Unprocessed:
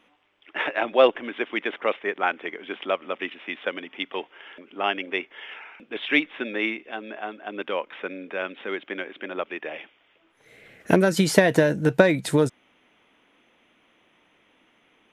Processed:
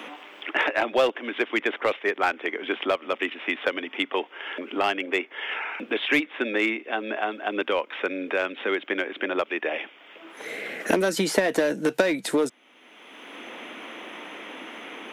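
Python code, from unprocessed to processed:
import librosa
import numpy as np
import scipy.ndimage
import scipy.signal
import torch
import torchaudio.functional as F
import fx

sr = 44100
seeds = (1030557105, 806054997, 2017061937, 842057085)

p1 = scipy.signal.sosfilt(scipy.signal.butter(4, 230.0, 'highpass', fs=sr, output='sos'), x)
p2 = 10.0 ** (-19.0 / 20.0) * (np.abs((p1 / 10.0 ** (-19.0 / 20.0) + 3.0) % 4.0 - 2.0) - 1.0)
p3 = p1 + F.gain(torch.from_numpy(p2), -9.5).numpy()
y = fx.band_squash(p3, sr, depth_pct=70)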